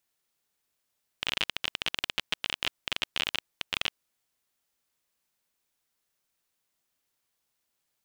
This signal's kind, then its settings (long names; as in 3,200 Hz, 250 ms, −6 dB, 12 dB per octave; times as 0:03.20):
Geiger counter clicks 26 per second −10.5 dBFS 2.73 s